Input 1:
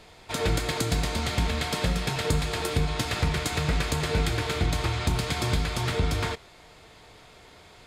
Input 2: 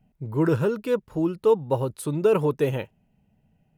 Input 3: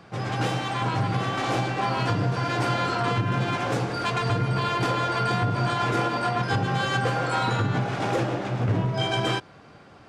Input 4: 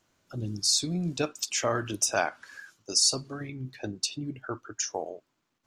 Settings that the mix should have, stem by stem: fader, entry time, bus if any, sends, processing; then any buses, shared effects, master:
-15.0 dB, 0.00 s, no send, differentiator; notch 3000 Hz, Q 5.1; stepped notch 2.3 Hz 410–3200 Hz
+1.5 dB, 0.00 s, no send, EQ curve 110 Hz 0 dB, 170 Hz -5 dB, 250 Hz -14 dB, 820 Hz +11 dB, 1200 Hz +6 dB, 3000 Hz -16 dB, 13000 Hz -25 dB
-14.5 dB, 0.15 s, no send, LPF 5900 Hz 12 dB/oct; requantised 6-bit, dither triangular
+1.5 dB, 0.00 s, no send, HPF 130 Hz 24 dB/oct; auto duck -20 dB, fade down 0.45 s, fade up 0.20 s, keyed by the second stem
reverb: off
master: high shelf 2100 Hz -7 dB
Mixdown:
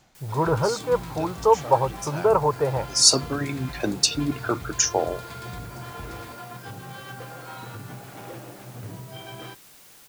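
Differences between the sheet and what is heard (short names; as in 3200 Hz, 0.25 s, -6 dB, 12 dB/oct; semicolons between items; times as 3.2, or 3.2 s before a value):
stem 1: missing differentiator; stem 4 +1.5 dB -> +10.0 dB; master: missing high shelf 2100 Hz -7 dB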